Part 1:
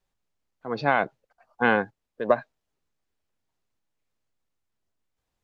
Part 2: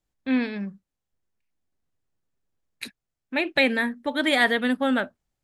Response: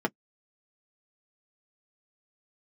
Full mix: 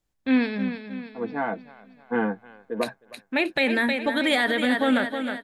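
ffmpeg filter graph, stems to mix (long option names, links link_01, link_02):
-filter_complex "[0:a]adelay=500,volume=-7dB,asplit=3[link_01][link_02][link_03];[link_02]volume=-9.5dB[link_04];[link_03]volume=-21dB[link_05];[1:a]volume=2.5dB,asplit=3[link_06][link_07][link_08];[link_07]volume=-9.5dB[link_09];[link_08]apad=whole_len=261700[link_10];[link_01][link_10]sidechaingate=range=-33dB:threshold=-42dB:ratio=16:detection=peak[link_11];[2:a]atrim=start_sample=2205[link_12];[link_04][link_12]afir=irnorm=-1:irlink=0[link_13];[link_05][link_09]amix=inputs=2:normalize=0,aecho=0:1:313|626|939|1252|1565|1878|2191:1|0.49|0.24|0.118|0.0576|0.0282|0.0138[link_14];[link_11][link_06][link_13][link_14]amix=inputs=4:normalize=0,alimiter=limit=-12.5dB:level=0:latency=1:release=45"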